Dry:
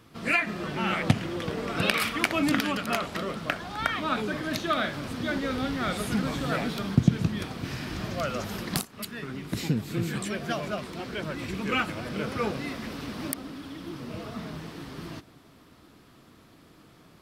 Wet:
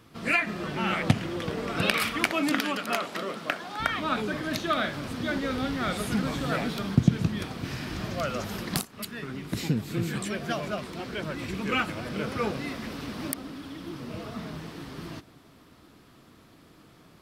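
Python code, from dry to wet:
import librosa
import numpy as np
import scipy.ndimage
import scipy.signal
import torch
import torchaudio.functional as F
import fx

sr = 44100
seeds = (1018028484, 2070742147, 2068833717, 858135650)

y = fx.highpass(x, sr, hz=240.0, slope=12, at=(2.31, 3.8))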